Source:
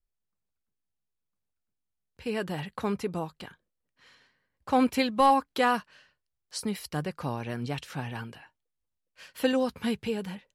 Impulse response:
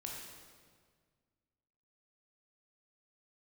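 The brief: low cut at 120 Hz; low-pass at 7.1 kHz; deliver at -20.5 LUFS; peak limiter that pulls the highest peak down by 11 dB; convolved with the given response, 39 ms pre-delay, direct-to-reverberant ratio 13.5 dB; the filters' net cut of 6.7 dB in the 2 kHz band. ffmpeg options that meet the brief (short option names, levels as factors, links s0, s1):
-filter_complex "[0:a]highpass=120,lowpass=7100,equalizer=f=2000:t=o:g=-9,alimiter=limit=0.0708:level=0:latency=1,asplit=2[s0][s1];[1:a]atrim=start_sample=2205,adelay=39[s2];[s1][s2]afir=irnorm=-1:irlink=0,volume=0.251[s3];[s0][s3]amix=inputs=2:normalize=0,volume=5.31"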